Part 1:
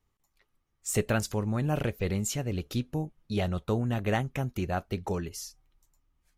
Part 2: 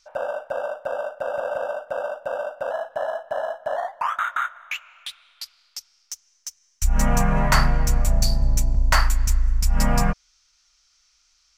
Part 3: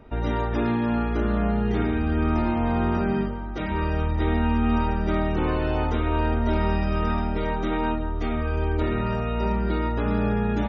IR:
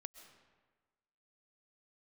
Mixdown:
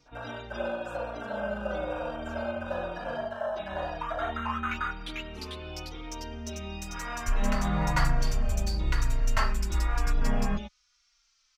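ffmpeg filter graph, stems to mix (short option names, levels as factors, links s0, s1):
-filter_complex "[0:a]acompressor=threshold=0.02:ratio=6,volume=0.211[s0];[1:a]asoftclip=type=hard:threshold=0.335,volume=0.944,asplit=2[s1][s2];[s2]volume=0.631[s3];[2:a]aexciter=amount=4.2:drive=8.3:freq=2500,volume=0.211[s4];[s0][s1]amix=inputs=2:normalize=0,highpass=1100,acompressor=threshold=0.0316:ratio=6,volume=1[s5];[s3]aecho=0:1:444:1[s6];[s4][s5][s6]amix=inputs=3:normalize=0,highshelf=f=5900:g=-11,asplit=2[s7][s8];[s8]adelay=3.7,afreqshift=-1[s9];[s7][s9]amix=inputs=2:normalize=1"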